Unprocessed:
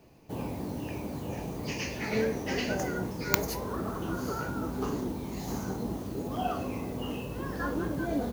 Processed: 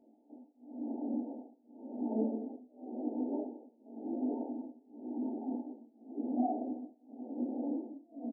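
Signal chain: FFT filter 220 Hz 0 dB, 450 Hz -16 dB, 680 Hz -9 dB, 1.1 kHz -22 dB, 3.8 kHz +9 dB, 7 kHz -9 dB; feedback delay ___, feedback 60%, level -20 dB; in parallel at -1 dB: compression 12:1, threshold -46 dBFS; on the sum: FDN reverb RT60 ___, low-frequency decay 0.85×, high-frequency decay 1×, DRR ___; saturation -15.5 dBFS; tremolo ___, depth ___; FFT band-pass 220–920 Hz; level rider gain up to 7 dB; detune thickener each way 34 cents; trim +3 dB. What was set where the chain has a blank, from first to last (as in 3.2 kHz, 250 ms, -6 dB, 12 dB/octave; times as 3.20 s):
116 ms, 3.4 s, 7 dB, 0.93 Hz, 98%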